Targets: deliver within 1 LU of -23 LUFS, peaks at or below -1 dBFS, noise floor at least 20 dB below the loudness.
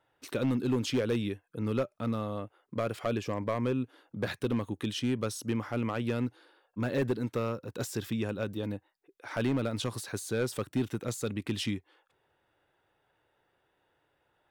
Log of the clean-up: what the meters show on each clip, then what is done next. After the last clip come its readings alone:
clipped 0.9%; flat tops at -22.5 dBFS; loudness -33.0 LUFS; peak -22.5 dBFS; loudness target -23.0 LUFS
-> clip repair -22.5 dBFS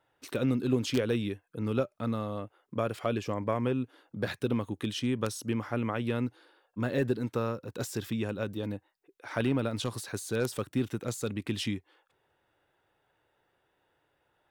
clipped 0.0%; loudness -32.5 LUFS; peak -13.5 dBFS; loudness target -23.0 LUFS
-> gain +9.5 dB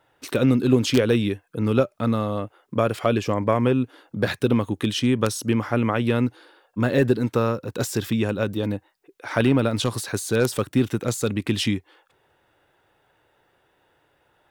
loudness -23.0 LUFS; peak -4.0 dBFS; noise floor -66 dBFS

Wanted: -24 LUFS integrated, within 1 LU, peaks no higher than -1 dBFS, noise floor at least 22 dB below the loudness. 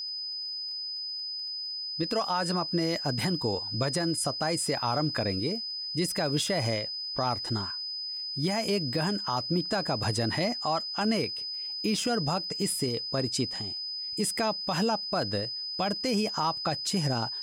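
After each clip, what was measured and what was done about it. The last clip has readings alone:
ticks 20/s; steady tone 5000 Hz; tone level -33 dBFS; loudness -29.0 LUFS; peak -17.5 dBFS; loudness target -24.0 LUFS
-> de-click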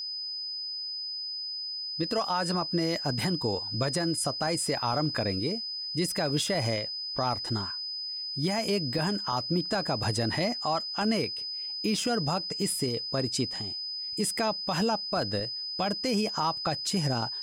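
ticks 0.057/s; steady tone 5000 Hz; tone level -33 dBFS
-> notch 5000 Hz, Q 30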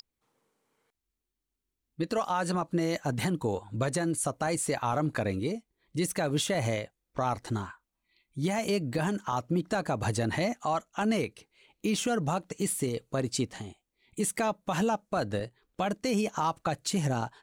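steady tone none; loudness -31.0 LUFS; peak -19.0 dBFS; loudness target -24.0 LUFS
-> gain +7 dB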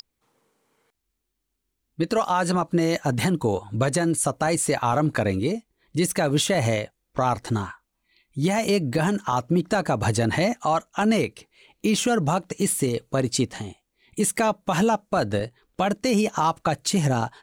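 loudness -24.0 LUFS; peak -12.0 dBFS; noise floor -78 dBFS

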